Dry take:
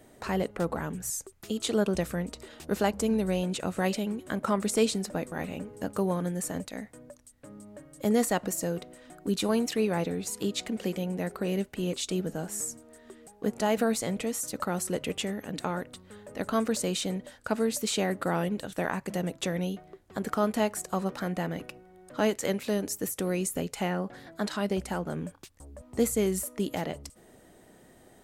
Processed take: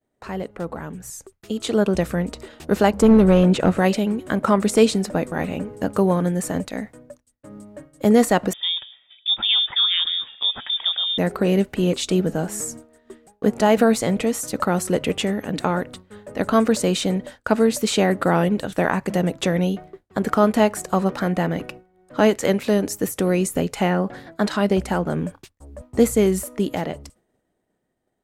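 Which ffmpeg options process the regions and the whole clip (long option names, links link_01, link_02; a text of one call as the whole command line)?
ffmpeg -i in.wav -filter_complex "[0:a]asettb=1/sr,asplit=3[link_01][link_02][link_03];[link_01]atrim=end=3.024[link_04];[link_02]atrim=start=3.02:end=3.78,asetpts=PTS-STARTPTS,afade=type=in:duration=0.004:curve=qsin,afade=type=out:start_time=0.756:duration=0.004:curve=qsin,volume=23.5dB,asoftclip=hard,volume=-23.5dB,highshelf=frequency=3400:gain=-10,acontrast=52[link_05];[link_03]atrim=start=3.776[link_06];[link_04][link_05]acrossfade=duration=0.004:curve1=hsin:curve2=qsin[link_07];[link_07][link_06]acrossfade=duration=0.004:curve1=qsin:curve2=hsin,asettb=1/sr,asplit=3[link_08][link_09][link_10];[link_08]atrim=end=8.534[link_11];[link_09]atrim=start=8.53:end=11.18,asetpts=PTS-STARTPTS,afade=type=in:duration=0.004:curve=qsin,afade=type=out:start_time=2.646:duration=0.004:curve=qsin,highshelf=frequency=2700:gain=-10.5,lowpass=frequency=3200:width_type=q:width=0.5098,lowpass=frequency=3200:width_type=q:width=0.6013,lowpass=frequency=3200:width_type=q:width=0.9,lowpass=frequency=3200:width_type=q:width=2.563,afreqshift=-3800[link_12];[link_10]atrim=start=11.176[link_13];[link_11][link_12]acrossfade=duration=0.004:curve1=hsin:curve2=qsin[link_14];[link_14][link_13]acrossfade=duration=0.004:curve1=qsin:curve2=hsin,agate=range=-33dB:threshold=-43dB:ratio=3:detection=peak,highshelf=frequency=3900:gain=-7,dynaudnorm=framelen=190:gausssize=17:maxgain=11.5dB" out.wav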